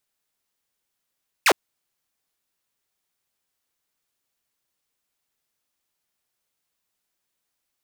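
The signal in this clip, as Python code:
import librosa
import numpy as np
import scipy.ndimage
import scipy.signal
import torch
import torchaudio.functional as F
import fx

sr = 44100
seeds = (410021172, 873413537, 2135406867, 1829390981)

y = fx.laser_zap(sr, level_db=-10.5, start_hz=2900.0, end_hz=290.0, length_s=0.06, wave='saw')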